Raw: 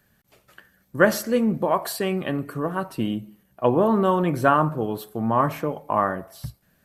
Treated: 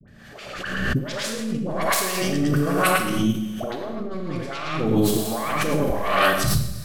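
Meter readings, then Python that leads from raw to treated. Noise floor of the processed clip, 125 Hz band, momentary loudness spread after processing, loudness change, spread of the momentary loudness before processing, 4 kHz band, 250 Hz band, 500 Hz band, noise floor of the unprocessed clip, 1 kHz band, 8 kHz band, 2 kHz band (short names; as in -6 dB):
-42 dBFS, +3.0 dB, 11 LU, 0.0 dB, 11 LU, +9.5 dB, +0.5 dB, -2.5 dB, -65 dBFS, -2.0 dB, +9.5 dB, +4.0 dB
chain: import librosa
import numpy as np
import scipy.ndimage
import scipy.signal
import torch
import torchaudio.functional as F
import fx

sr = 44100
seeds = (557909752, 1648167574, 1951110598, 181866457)

p1 = fx.tracing_dist(x, sr, depth_ms=0.34)
p2 = fx.bass_treble(p1, sr, bass_db=4, treble_db=9)
p3 = fx.dispersion(p2, sr, late='highs', ms=77.0, hz=970.0)
p4 = p3 + fx.echo_single(p3, sr, ms=110, db=-5.0, dry=0)
p5 = fx.over_compress(p4, sr, threshold_db=-30.0, ratio=-1.0)
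p6 = fx.env_lowpass(p5, sr, base_hz=2900.0, full_db=-21.5)
p7 = fx.vibrato(p6, sr, rate_hz=1.3, depth_cents=55.0)
p8 = fx.notch(p7, sr, hz=930.0, q=7.6)
p9 = fx.rev_schroeder(p8, sr, rt60_s=1.2, comb_ms=28, drr_db=3.5)
p10 = fx.harmonic_tremolo(p9, sr, hz=1.2, depth_pct=70, crossover_hz=420.0)
p11 = fx.low_shelf(p10, sr, hz=210.0, db=-5.0)
p12 = fx.pre_swell(p11, sr, db_per_s=37.0)
y = p12 * 10.0 ** (8.0 / 20.0)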